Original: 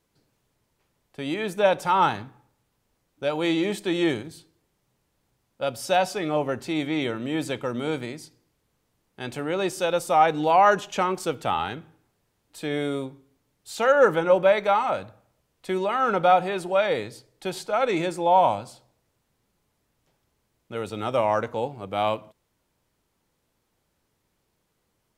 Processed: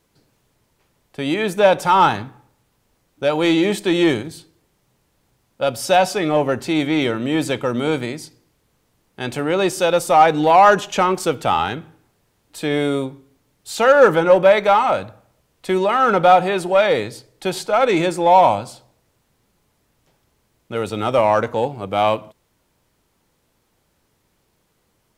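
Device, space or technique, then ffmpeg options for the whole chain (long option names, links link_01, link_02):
parallel distortion: -filter_complex "[0:a]asplit=2[link_01][link_02];[link_02]asoftclip=type=hard:threshold=-21dB,volume=-8dB[link_03];[link_01][link_03]amix=inputs=2:normalize=0,volume=5dB"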